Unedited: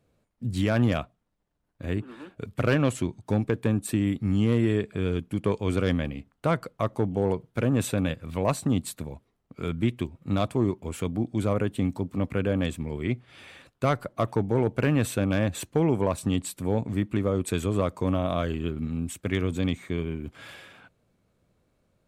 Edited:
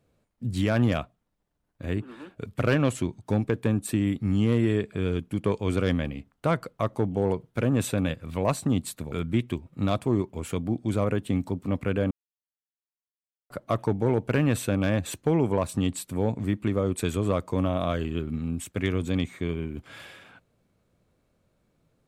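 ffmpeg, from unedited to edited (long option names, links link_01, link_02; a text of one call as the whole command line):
ffmpeg -i in.wav -filter_complex "[0:a]asplit=4[link_01][link_02][link_03][link_04];[link_01]atrim=end=9.122[link_05];[link_02]atrim=start=9.608:end=12.6,asetpts=PTS-STARTPTS,afade=type=out:start_time=2.988:duration=0.004:curve=hsin[link_06];[link_03]atrim=start=12.6:end=13.99,asetpts=PTS-STARTPTS,volume=0[link_07];[link_04]atrim=start=13.99,asetpts=PTS-STARTPTS,afade=type=in:duration=0.004:curve=hsin[link_08];[link_06][link_07][link_08]concat=n=3:v=0:a=1[link_09];[link_05][link_09]acrossfade=duration=0.004:curve1=hsin:curve2=hsin" out.wav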